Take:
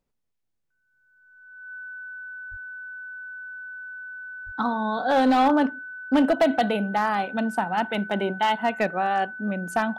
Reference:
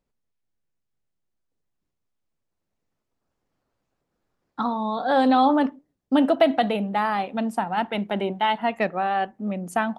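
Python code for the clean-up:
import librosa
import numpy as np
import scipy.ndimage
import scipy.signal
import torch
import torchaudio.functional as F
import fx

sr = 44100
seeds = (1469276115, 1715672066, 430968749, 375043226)

y = fx.fix_declip(x, sr, threshold_db=-14.0)
y = fx.notch(y, sr, hz=1500.0, q=30.0)
y = fx.fix_deplosive(y, sr, at_s=(2.5, 4.45))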